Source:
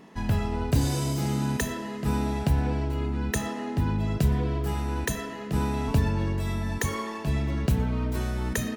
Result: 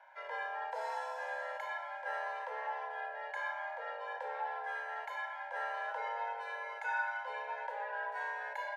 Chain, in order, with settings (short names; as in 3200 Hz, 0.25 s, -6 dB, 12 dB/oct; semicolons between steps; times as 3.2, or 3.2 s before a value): double band-pass 840 Hz, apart 1.1 oct; harmonic-percussive split percussive -14 dB; frequency shift +370 Hz; gain +7 dB